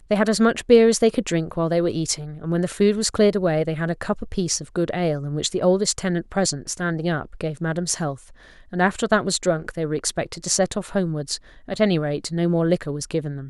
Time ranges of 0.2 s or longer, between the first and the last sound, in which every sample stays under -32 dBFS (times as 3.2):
8.15–8.73
11.37–11.68